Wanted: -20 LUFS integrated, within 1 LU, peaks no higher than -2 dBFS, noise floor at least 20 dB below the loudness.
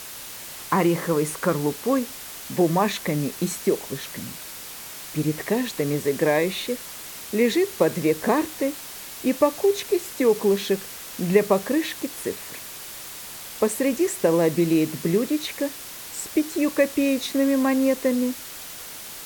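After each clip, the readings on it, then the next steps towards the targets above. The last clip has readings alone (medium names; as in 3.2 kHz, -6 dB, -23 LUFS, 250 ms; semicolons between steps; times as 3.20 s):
noise floor -38 dBFS; noise floor target -44 dBFS; loudness -23.5 LUFS; peak level -6.0 dBFS; loudness target -20.0 LUFS
-> noise reduction 6 dB, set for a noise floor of -38 dBFS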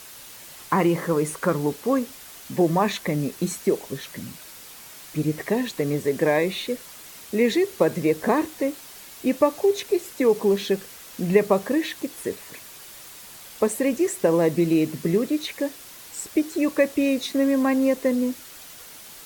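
noise floor -43 dBFS; noise floor target -44 dBFS
-> noise reduction 6 dB, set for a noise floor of -43 dBFS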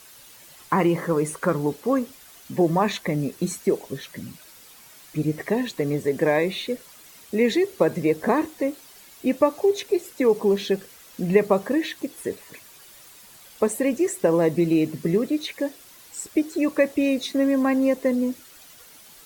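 noise floor -49 dBFS; loudness -23.5 LUFS; peak level -6.0 dBFS; loudness target -20.0 LUFS
-> trim +3.5 dB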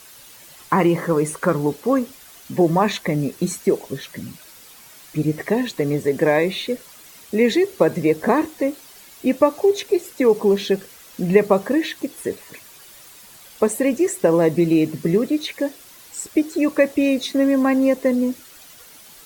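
loudness -20.0 LUFS; peak level -2.5 dBFS; noise floor -45 dBFS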